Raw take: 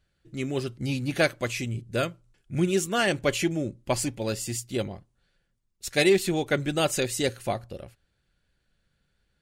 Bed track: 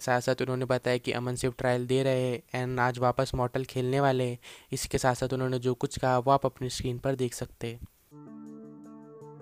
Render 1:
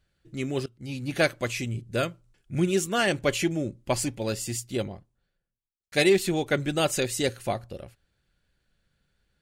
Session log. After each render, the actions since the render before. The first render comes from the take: 0.66–1.23 s: fade in, from -22.5 dB; 4.66–5.92 s: studio fade out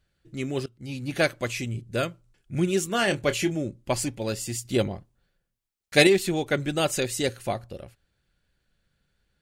2.87–3.55 s: doubling 26 ms -10.5 dB; 4.65–6.07 s: gain +5.5 dB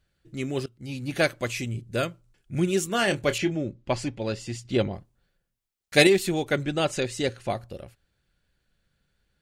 3.38–4.93 s: low-pass 4.5 kHz; 6.63–7.50 s: distance through air 66 m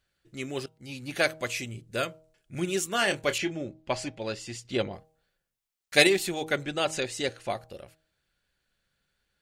bass shelf 370 Hz -9.5 dB; de-hum 158.1 Hz, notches 6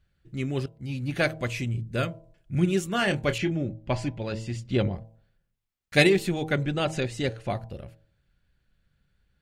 tone controls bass +14 dB, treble -7 dB; de-hum 110.9 Hz, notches 9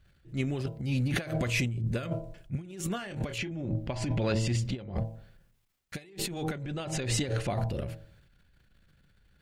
transient shaper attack -6 dB, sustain +8 dB; compressor with a negative ratio -31 dBFS, ratio -0.5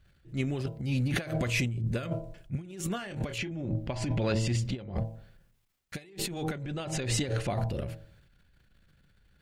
no audible change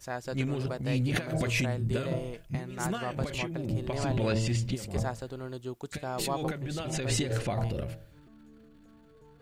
add bed track -10 dB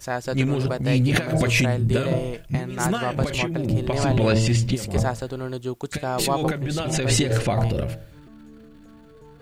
trim +9 dB

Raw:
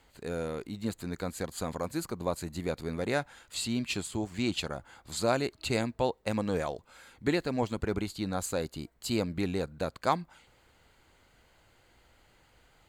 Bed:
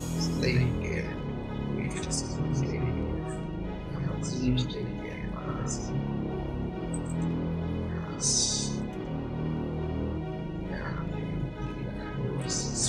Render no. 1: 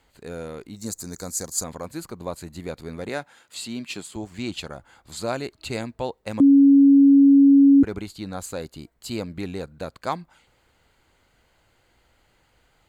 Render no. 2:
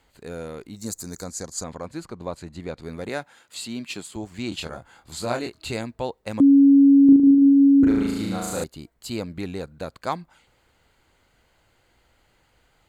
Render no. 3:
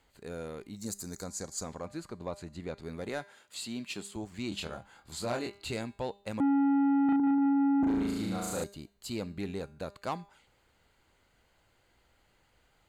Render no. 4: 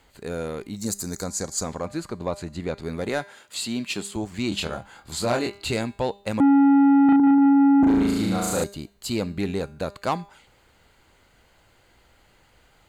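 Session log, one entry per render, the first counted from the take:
0.76–1.64 s: resonant high shelf 4.3 kHz +12 dB, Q 3; 3.09–4.16 s: high-pass 160 Hz; 6.40–7.83 s: bleep 278 Hz -9.5 dBFS
1.24–2.83 s: distance through air 62 m; 4.49–5.73 s: doubling 25 ms -4 dB; 7.05–8.64 s: flutter echo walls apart 6.3 m, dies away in 1.4 s
feedback comb 200 Hz, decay 0.52 s, harmonics all, mix 50%; saturation -24 dBFS, distortion -9 dB
trim +10 dB

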